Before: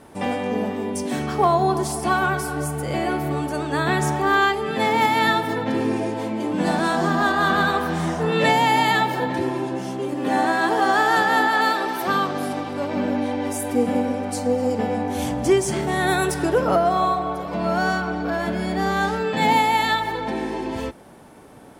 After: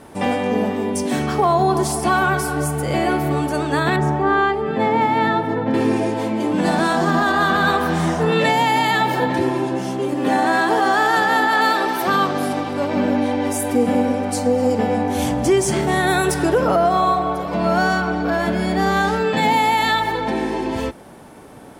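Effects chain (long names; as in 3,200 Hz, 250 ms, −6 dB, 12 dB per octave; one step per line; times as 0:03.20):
0:03.96–0:05.74: low-pass filter 1,000 Hz 6 dB per octave
brickwall limiter −12.5 dBFS, peak gain reduction 4.5 dB
level +4.5 dB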